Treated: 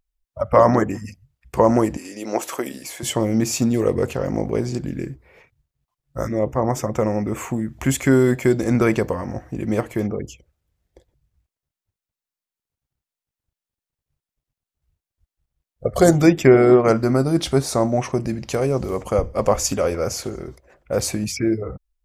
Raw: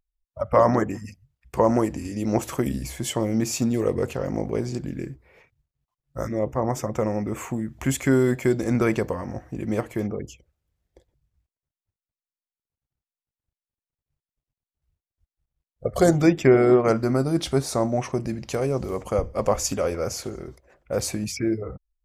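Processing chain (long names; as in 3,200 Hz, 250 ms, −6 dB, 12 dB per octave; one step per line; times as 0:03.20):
0:01.97–0:03.03: high-pass filter 430 Hz 12 dB per octave
0:16.06–0:16.52: high-shelf EQ 11,000 Hz +10.5 dB
level +4 dB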